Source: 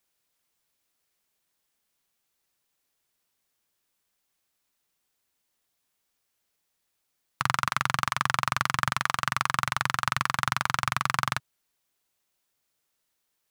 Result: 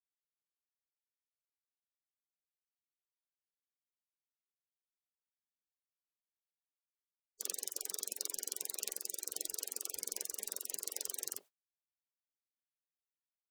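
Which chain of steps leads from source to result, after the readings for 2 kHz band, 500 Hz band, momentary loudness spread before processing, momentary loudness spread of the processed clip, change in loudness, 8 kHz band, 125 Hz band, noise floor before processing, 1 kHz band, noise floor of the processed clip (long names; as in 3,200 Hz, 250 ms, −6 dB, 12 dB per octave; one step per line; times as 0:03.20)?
−32.0 dB, −10.0 dB, 2 LU, 2 LU, −12.5 dB, 0.0 dB, below −40 dB, −78 dBFS, −38.0 dB, below −85 dBFS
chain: sub-octave generator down 2 octaves, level +1 dB
gate on every frequency bin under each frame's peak −25 dB weak
level +3 dB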